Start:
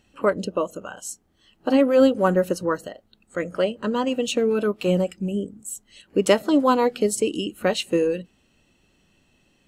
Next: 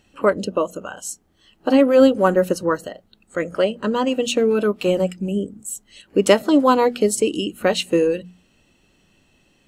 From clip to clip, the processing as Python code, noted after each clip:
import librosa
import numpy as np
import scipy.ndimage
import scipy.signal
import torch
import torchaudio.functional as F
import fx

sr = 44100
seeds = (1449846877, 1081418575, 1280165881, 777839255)

y = fx.hum_notches(x, sr, base_hz=60, count=4)
y = F.gain(torch.from_numpy(y), 3.5).numpy()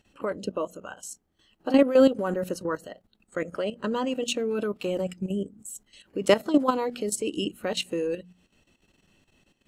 y = fx.level_steps(x, sr, step_db=12)
y = F.gain(torch.from_numpy(y), -3.0).numpy()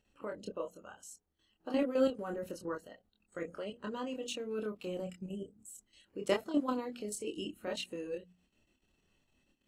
y = fx.chorus_voices(x, sr, voices=6, hz=0.27, base_ms=26, depth_ms=2.3, mix_pct=40)
y = F.gain(torch.from_numpy(y), -8.0).numpy()